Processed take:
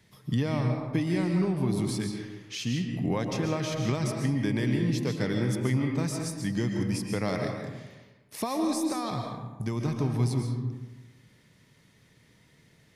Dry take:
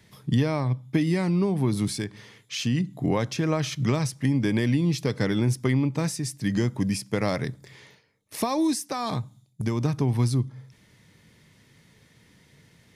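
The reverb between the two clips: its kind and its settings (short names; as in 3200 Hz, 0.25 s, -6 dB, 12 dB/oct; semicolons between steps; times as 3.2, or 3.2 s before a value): digital reverb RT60 1.2 s, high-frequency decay 0.5×, pre-delay 95 ms, DRR 2.5 dB; gain -5 dB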